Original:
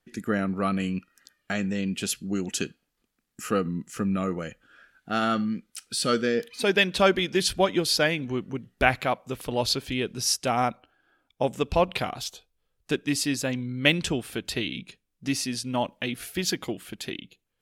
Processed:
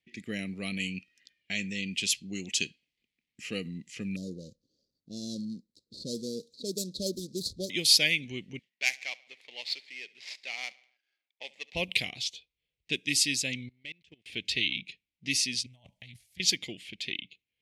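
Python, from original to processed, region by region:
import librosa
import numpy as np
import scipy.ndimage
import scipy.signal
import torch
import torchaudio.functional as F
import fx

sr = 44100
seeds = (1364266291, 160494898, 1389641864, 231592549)

y = fx.chain(x, sr, fx.median_filter(points=15),
    fx.cheby1_bandstop(low_hz=570.0, high_hz=4000.0, order=4),
    fx.peak_eq(hz=3100.0, db=-3.0, octaves=0.45), at=(4.16, 7.7))
y = fx.chain(y, sr, fx.median_filter(points=15),
    fx.highpass(hz=1000.0, slope=12),
    fx.echo_feedback(ms=70, feedback_pct=54, wet_db=-22), at=(8.59, 11.75))
y = fx.chain(y, sr, fx.leveller(passes=3),
    fx.gate_flip(shuts_db=-18.0, range_db=-26),
    fx.level_steps(step_db=20), at=(13.68, 14.26))
y = fx.chain(y, sr, fx.curve_eq(hz=(120.0, 390.0, 690.0, 1800.0, 2600.0, 6800.0, 14000.0), db=(0, -27, -5, -16, -20, 0, 10)),
    fx.over_compress(threshold_db=-45.0, ratio=-1.0),
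    fx.doppler_dist(depth_ms=0.23), at=(15.66, 16.4))
y = scipy.signal.sosfilt(scipy.signal.butter(2, 55.0, 'highpass', fs=sr, output='sos'), y)
y = fx.env_lowpass(y, sr, base_hz=2600.0, full_db=-20.0)
y = fx.curve_eq(y, sr, hz=(180.0, 520.0, 1400.0, 2100.0), db=(0, -4, -18, 13))
y = y * 10.0 ** (-8.5 / 20.0)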